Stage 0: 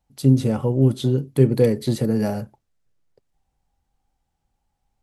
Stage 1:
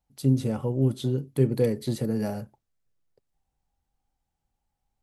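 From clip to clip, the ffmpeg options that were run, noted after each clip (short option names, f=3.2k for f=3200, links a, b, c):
-af "highshelf=f=11k:g=4,volume=-6.5dB"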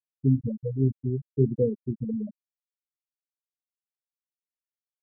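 -af "afftfilt=real='re*gte(hypot(re,im),0.282)':imag='im*gte(hypot(re,im),0.282)':win_size=1024:overlap=0.75"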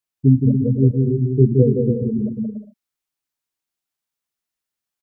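-filter_complex "[0:a]equalizer=f=520:t=o:w=0.36:g=-5,asplit=2[a][b];[b]aecho=0:1:170|280.5|352.3|399|429.4:0.631|0.398|0.251|0.158|0.1[c];[a][c]amix=inputs=2:normalize=0,volume=8.5dB"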